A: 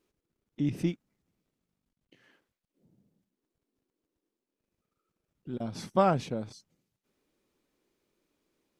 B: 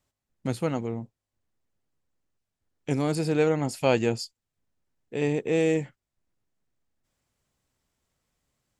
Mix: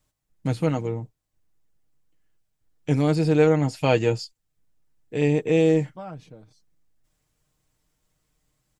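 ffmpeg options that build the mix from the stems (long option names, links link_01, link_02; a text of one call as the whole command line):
ffmpeg -i stem1.wav -i stem2.wav -filter_complex "[0:a]volume=-13.5dB,afade=type=in:start_time=5.69:duration=0.56:silence=0.375837[link_01];[1:a]highshelf=frequency=7000:gain=5,volume=1dB[link_02];[link_01][link_02]amix=inputs=2:normalize=0,acrossover=split=5600[link_03][link_04];[link_04]acompressor=threshold=-52dB:ratio=4:attack=1:release=60[link_05];[link_03][link_05]amix=inputs=2:normalize=0,lowshelf=frequency=98:gain=9,aecho=1:1:6.5:0.51" out.wav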